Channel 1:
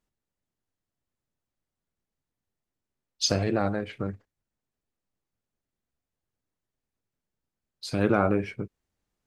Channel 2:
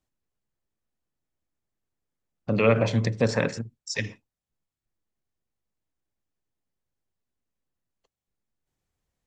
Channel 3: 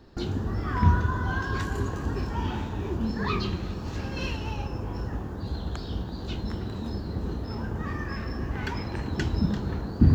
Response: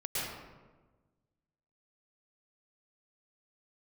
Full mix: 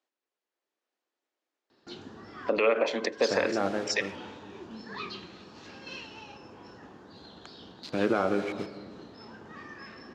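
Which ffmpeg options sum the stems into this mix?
-filter_complex "[0:a]adynamicsmooth=sensitivity=8:basefreq=1400,acrusher=bits=6:mix=0:aa=0.000001,volume=-5dB,asplit=2[link_01][link_02];[link_02]volume=-16dB[link_03];[1:a]highpass=frequency=300:width=0.5412,highpass=frequency=300:width=1.3066,volume=1.5dB,asplit=2[link_04][link_05];[2:a]highshelf=frequency=2200:gain=10,adelay=1700,volume=-15.5dB[link_06];[link_05]apad=whole_len=522493[link_07];[link_06][link_07]sidechaincompress=threshold=-39dB:ratio=8:attack=12:release=141[link_08];[3:a]atrim=start_sample=2205[link_09];[link_03][link_09]afir=irnorm=-1:irlink=0[link_10];[link_01][link_04][link_08][link_10]amix=inputs=4:normalize=0,dynaudnorm=framelen=230:gausssize=5:maxgain=4.5dB,highpass=240,lowpass=5000,alimiter=limit=-14.5dB:level=0:latency=1:release=229"

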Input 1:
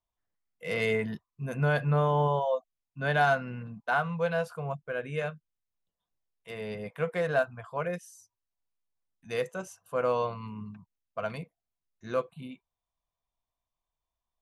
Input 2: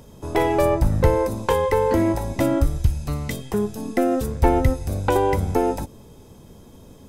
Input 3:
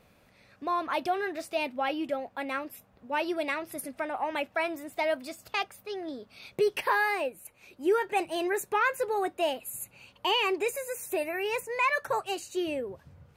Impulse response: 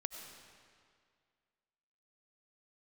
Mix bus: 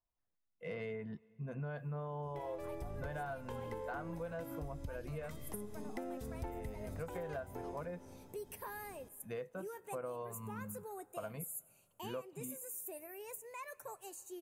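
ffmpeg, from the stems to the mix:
-filter_complex "[0:a]lowpass=frequency=1100:poles=1,volume=-3dB,asplit=3[link_01][link_02][link_03];[link_02]volume=-23.5dB[link_04];[1:a]adelay=2000,volume=-14.5dB,asplit=2[link_05][link_06];[link_06]volume=-4.5dB[link_07];[2:a]equalizer=frequency=2400:width_type=o:width=1.8:gain=-7,aexciter=amount=5.5:drive=3.6:freq=6400,adelay=1750,volume=-18.5dB,asplit=2[link_08][link_09];[link_09]volume=-13.5dB[link_10];[link_03]apad=whole_len=400660[link_11];[link_05][link_11]sidechaincompress=threshold=-46dB:ratio=8:attack=16:release=1310[link_12];[3:a]atrim=start_sample=2205[link_13];[link_04][link_07][link_10]amix=inputs=3:normalize=0[link_14];[link_14][link_13]afir=irnorm=-1:irlink=0[link_15];[link_01][link_12][link_08][link_15]amix=inputs=4:normalize=0,acompressor=threshold=-40dB:ratio=6"

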